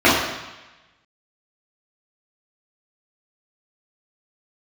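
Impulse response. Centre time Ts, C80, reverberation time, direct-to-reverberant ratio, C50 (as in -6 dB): 66 ms, 4.5 dB, 1.1 s, -10.5 dB, 1.0 dB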